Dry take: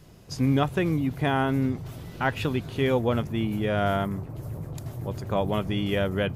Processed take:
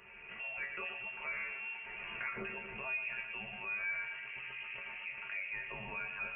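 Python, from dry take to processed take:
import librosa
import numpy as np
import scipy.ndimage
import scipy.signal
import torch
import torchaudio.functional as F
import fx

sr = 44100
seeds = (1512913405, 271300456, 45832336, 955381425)

p1 = fx.recorder_agc(x, sr, target_db=-15.5, rise_db_per_s=38.0, max_gain_db=30)
p2 = scipy.signal.sosfilt(scipy.signal.butter(2, 500.0, 'highpass', fs=sr, output='sos'), p1)
p3 = fx.resonator_bank(p2, sr, root=53, chord='sus4', decay_s=0.22)
p4 = p3 + fx.echo_feedback(p3, sr, ms=117, feedback_pct=52, wet_db=-11.5, dry=0)
p5 = fx.freq_invert(p4, sr, carrier_hz=3000)
p6 = fx.env_flatten(p5, sr, amount_pct=50)
y = F.gain(torch.from_numpy(p6), -3.5).numpy()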